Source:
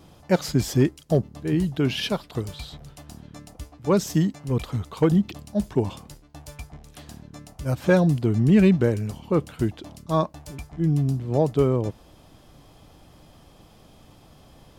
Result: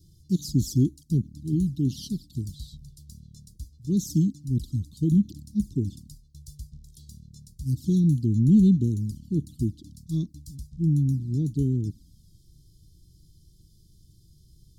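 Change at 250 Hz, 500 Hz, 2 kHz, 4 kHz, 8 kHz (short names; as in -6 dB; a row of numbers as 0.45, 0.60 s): -1.0 dB, -16.0 dB, under -40 dB, n/a, -2.5 dB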